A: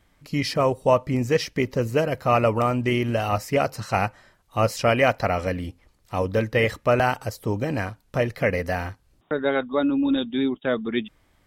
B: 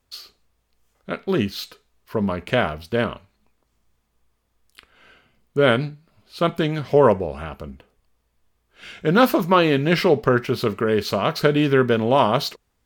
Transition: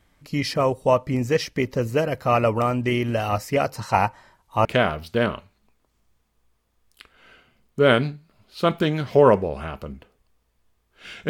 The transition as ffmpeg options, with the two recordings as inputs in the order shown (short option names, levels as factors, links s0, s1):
-filter_complex "[0:a]asettb=1/sr,asplit=3[s0][s1][s2];[s0]atrim=end=3.764[s3];[s1]atrim=start=3.76:end=4.65,asetpts=PTS-STARTPTS,afade=t=in:d=0.004:c=qsin,afade=t=out:st=0.886:d=0.004:c=qsin,equalizer=f=930:t=o:w=0.29:g=12.5[s4];[s2]atrim=start=4.646[s5];[s3][s4]acrossfade=d=0.004:c1=hsin:c2=qsin[s6];[s6][s5]acrossfade=d=0.004:c1=qsin:c2=hsin,apad=whole_dur=11.29,atrim=end=11.29,atrim=end=4.652[s7];[1:a]atrim=start=2.428:end=9.07[s8];[s7][s8]acrossfade=d=0.004:c1=hsin:c2=hsin"